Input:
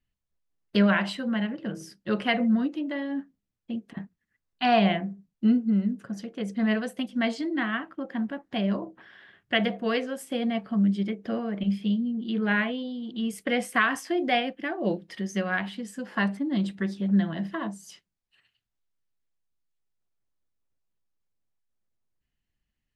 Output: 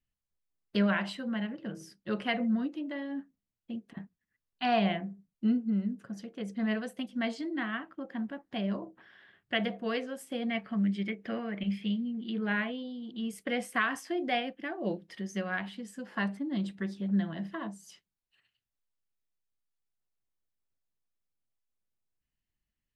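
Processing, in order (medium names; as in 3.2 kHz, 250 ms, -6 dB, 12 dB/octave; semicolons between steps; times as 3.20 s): 10.49–12.30 s: peaking EQ 2.1 kHz +11 dB 1 oct; trim -6 dB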